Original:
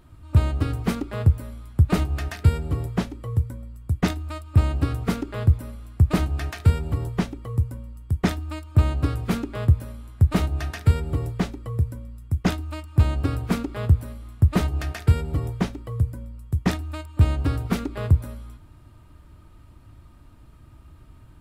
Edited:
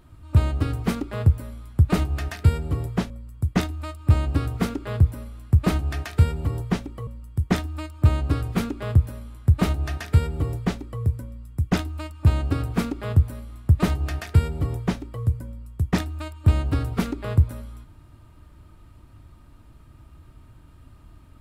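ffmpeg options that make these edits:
-filter_complex "[0:a]asplit=3[a][b][c];[a]atrim=end=3.102[d];[b]atrim=start=3.568:end=7.542[e];[c]atrim=start=7.798[f];[d][e]acrossfade=d=0.004:c1=hsin:c2=hsin[g];[g][f]acrossfade=d=0.004:c1=hsin:c2=hsin"

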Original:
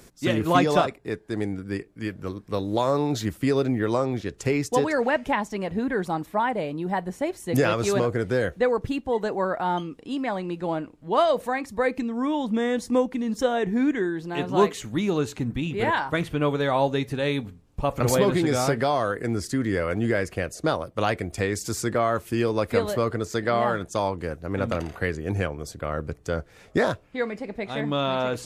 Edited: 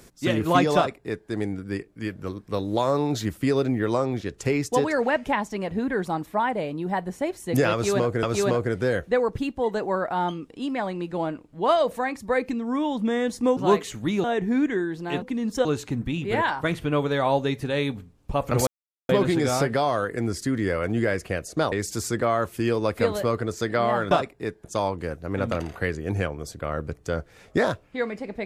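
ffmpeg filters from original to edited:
-filter_complex "[0:a]asplit=10[a][b][c][d][e][f][g][h][i][j];[a]atrim=end=8.232[k];[b]atrim=start=7.718:end=13.062[l];[c]atrim=start=14.468:end=15.142[m];[d]atrim=start=13.488:end=14.472[n];[e]atrim=start=13.058:end=13.492[o];[f]atrim=start=15.138:end=18.16,asetpts=PTS-STARTPTS,afade=t=out:st=3.018:d=0.004:c=hsin,apad=pad_dur=0.42[p];[g]atrim=start=18.16:end=20.792,asetpts=PTS-STARTPTS,afade=t=in:d=0.004:c=hsin[q];[h]atrim=start=21.448:end=23.842[r];[i]atrim=start=0.758:end=1.292[s];[j]atrim=start=23.838[t];[k][l]acrossfade=d=0.004:c1=hsin:c2=hsin[u];[u][m]acrossfade=d=0.004:c1=hsin:c2=hsin[v];[v][n]acrossfade=d=0.004:c1=hsin:c2=hsin[w];[w][o]acrossfade=d=0.004:c1=hsin:c2=hsin[x];[p][q]concat=n=2:v=0:a=1[y];[x][y]acrossfade=d=0.004:c1=hsin:c2=hsin[z];[z][r]acrossfade=d=0.004:c1=hsin:c2=hsin[aa];[aa][s]acrossfade=d=0.004:c1=hsin:c2=hsin[ab];[ab][t]acrossfade=d=0.004:c1=hsin:c2=hsin"

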